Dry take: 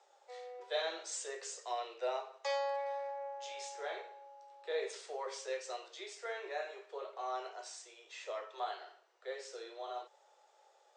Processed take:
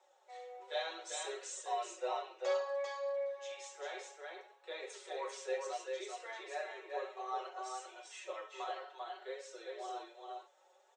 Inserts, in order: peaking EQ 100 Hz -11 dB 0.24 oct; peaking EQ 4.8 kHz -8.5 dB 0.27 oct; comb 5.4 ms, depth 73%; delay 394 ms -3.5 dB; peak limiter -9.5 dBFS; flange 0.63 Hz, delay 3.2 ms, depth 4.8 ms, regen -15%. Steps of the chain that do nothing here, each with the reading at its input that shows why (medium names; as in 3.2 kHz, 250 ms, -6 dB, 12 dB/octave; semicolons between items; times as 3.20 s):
peaking EQ 100 Hz: input has nothing below 320 Hz; peak limiter -9.5 dBFS: peak at its input -22.0 dBFS